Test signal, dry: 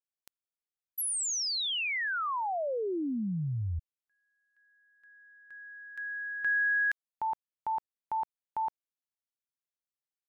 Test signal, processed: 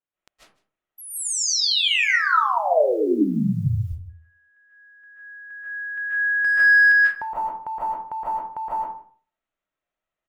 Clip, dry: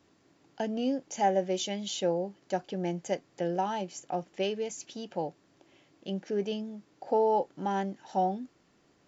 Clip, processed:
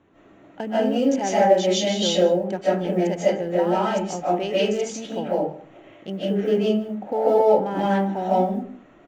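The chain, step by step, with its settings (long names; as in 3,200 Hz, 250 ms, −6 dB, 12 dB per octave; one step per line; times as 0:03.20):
adaptive Wiener filter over 9 samples
low-pass filter 6,400 Hz 12 dB per octave
dynamic equaliser 730 Hz, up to −5 dB, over −42 dBFS, Q 2.8
in parallel at +0.5 dB: downward compressor 8 to 1, threshold −37 dBFS
on the sum: floating-point word with a short mantissa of 6 bits
on a send: single-tap delay 155 ms −20.5 dB
on the sum: comb and all-pass reverb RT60 0.43 s, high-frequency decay 0.5×, pre-delay 110 ms, DRR −9.5 dB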